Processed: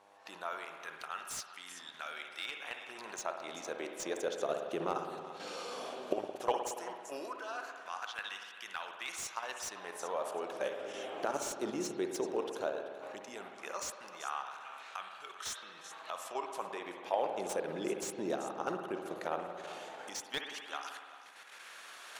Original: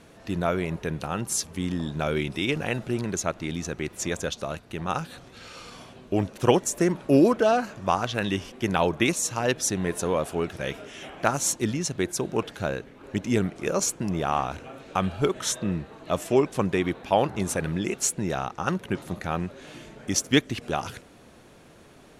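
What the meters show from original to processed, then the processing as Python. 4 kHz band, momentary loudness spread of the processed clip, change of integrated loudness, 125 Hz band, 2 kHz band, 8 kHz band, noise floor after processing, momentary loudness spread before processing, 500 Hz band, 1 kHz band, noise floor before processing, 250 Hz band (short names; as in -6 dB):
-10.5 dB, 9 LU, -13.0 dB, -27.5 dB, -10.5 dB, -14.5 dB, -53 dBFS, 11 LU, -11.5 dB, -9.5 dB, -52 dBFS, -18.0 dB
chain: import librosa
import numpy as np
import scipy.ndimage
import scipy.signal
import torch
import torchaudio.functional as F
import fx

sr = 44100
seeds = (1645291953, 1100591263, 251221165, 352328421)

p1 = fx.recorder_agc(x, sr, target_db=-14.0, rise_db_per_s=18.0, max_gain_db=30)
p2 = fx.dmg_buzz(p1, sr, base_hz=100.0, harmonics=11, level_db=-38.0, tilt_db=-7, odd_only=False)
p3 = fx.dynamic_eq(p2, sr, hz=2100.0, q=1.4, threshold_db=-45.0, ratio=4.0, max_db=-6)
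p4 = fx.level_steps(p3, sr, step_db=9)
p5 = fx.high_shelf(p4, sr, hz=7700.0, db=-4.0)
p6 = fx.filter_lfo_highpass(p5, sr, shape='sine', hz=0.15, low_hz=380.0, high_hz=1600.0, q=1.4)
p7 = p6 + fx.echo_single(p6, sr, ms=385, db=-15.5, dry=0)
p8 = fx.rev_spring(p7, sr, rt60_s=1.7, pass_ms=(56,), chirp_ms=50, drr_db=4.5)
p9 = fx.slew_limit(p8, sr, full_power_hz=170.0)
y = F.gain(torch.from_numpy(p9), -7.0).numpy()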